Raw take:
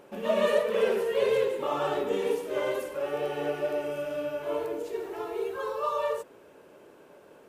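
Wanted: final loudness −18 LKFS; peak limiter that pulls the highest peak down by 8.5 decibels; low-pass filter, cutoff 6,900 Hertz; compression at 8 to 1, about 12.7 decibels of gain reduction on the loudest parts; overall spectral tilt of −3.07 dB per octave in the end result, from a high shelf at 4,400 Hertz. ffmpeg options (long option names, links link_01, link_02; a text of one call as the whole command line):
ffmpeg -i in.wav -af "lowpass=6900,highshelf=frequency=4400:gain=4,acompressor=threshold=-34dB:ratio=8,volume=23dB,alimiter=limit=-10dB:level=0:latency=1" out.wav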